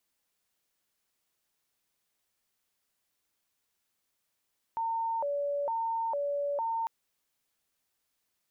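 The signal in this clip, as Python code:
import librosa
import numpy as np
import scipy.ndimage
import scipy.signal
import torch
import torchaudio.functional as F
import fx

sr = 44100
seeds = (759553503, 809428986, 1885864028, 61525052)

y = fx.siren(sr, length_s=2.1, kind='hi-lo', low_hz=572.0, high_hz=910.0, per_s=1.1, wave='sine', level_db=-28.5)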